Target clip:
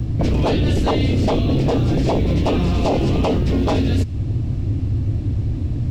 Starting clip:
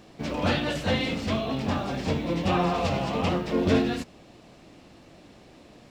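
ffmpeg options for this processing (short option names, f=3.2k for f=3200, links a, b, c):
-filter_complex "[0:a]equalizer=f=270:w=1.9:g=9.5,acrossover=split=1200|2400[a][b][c];[a]acompressor=threshold=-34dB:ratio=4[d];[b]acompressor=threshold=-49dB:ratio=4[e];[c]acompressor=threshold=-36dB:ratio=4[f];[d][e][f]amix=inputs=3:normalize=0,lowshelf=f=140:t=q:w=3:g=9.5,acrossover=split=230|850|1500[g][h][i][j];[g]aeval=exprs='0.106*sin(PI/2*7.94*val(0)/0.106)':c=same[k];[k][h][i][j]amix=inputs=4:normalize=0,volume=5.5dB"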